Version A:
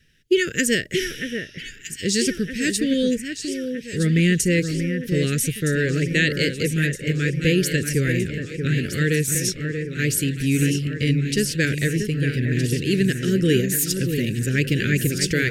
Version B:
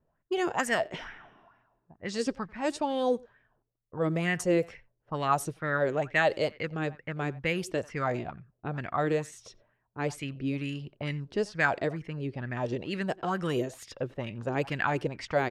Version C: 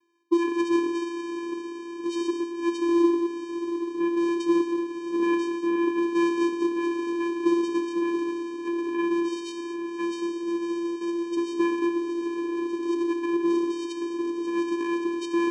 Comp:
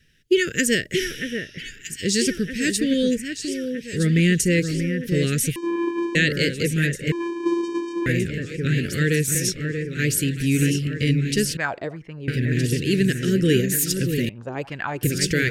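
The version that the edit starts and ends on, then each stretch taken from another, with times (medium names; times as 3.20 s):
A
5.56–6.15 s: from C
7.12–8.06 s: from C
11.57–12.28 s: from B
14.29–15.03 s: from B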